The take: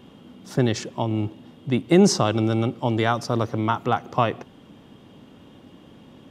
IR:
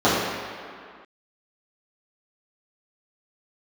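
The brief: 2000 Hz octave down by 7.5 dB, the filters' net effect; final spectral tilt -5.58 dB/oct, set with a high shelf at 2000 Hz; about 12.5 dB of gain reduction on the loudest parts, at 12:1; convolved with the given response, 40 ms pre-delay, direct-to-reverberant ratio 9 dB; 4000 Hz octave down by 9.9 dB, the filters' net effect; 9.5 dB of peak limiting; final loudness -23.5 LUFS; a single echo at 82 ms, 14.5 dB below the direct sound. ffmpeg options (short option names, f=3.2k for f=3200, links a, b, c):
-filter_complex "[0:a]highshelf=f=2k:g=-8.5,equalizer=f=2k:t=o:g=-4.5,equalizer=f=4k:t=o:g=-3,acompressor=threshold=-23dB:ratio=12,alimiter=limit=-21dB:level=0:latency=1,aecho=1:1:82:0.188,asplit=2[a][b];[1:a]atrim=start_sample=2205,adelay=40[c];[b][c]afir=irnorm=-1:irlink=0,volume=-32.5dB[d];[a][d]amix=inputs=2:normalize=0,volume=8dB"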